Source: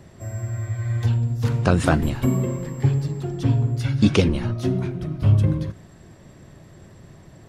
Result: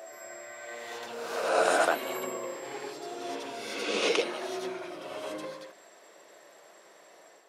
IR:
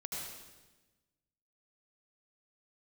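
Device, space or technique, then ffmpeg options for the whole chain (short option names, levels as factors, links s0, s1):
ghost voice: -filter_complex "[0:a]areverse[s0];[1:a]atrim=start_sample=2205[s1];[s0][s1]afir=irnorm=-1:irlink=0,areverse,highpass=f=470:w=0.5412,highpass=f=470:w=1.3066"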